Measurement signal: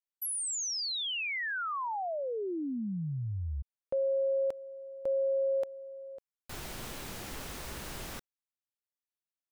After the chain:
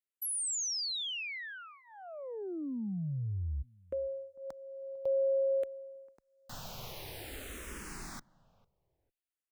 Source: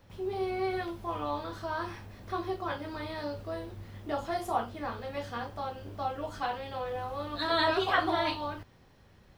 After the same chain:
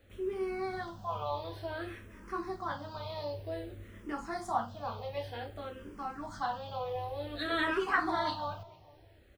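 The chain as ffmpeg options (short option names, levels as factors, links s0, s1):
-filter_complex "[0:a]asplit=2[s0][s1];[s1]adelay=450,lowpass=f=1000:p=1,volume=0.0891,asplit=2[s2][s3];[s3]adelay=450,lowpass=f=1000:p=1,volume=0.28[s4];[s0][s2][s4]amix=inputs=3:normalize=0,asplit=2[s5][s6];[s6]afreqshift=-0.54[s7];[s5][s7]amix=inputs=2:normalize=1"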